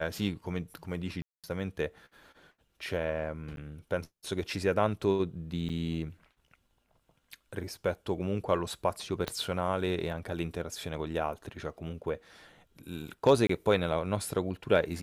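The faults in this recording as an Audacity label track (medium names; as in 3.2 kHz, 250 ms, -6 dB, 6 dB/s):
1.220000	1.440000	dropout 217 ms
3.560000	3.570000	dropout 12 ms
5.690000	5.700000	dropout 6 ms
9.280000	9.280000	pop -16 dBFS
13.470000	13.490000	dropout 24 ms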